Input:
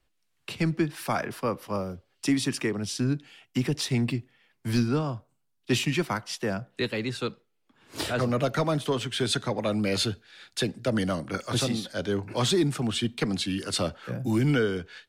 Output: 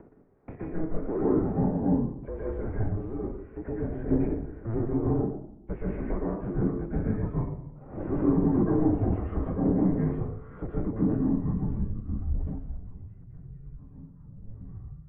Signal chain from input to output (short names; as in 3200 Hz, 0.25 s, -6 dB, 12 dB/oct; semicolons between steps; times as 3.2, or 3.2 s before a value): soft clip -30 dBFS, distortion -7 dB; de-hum 95.77 Hz, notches 30; reverb RT60 0.65 s, pre-delay 0.114 s, DRR -7.5 dB; upward compressor, threshold -25 dBFS; 4.1–4.85 sample leveller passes 2; low-pass sweep 720 Hz -> 170 Hz, 10.97–13.11; mistuned SSB -330 Hz 360–2400 Hz; 12.1–12.59 sustainer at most 38 dB/s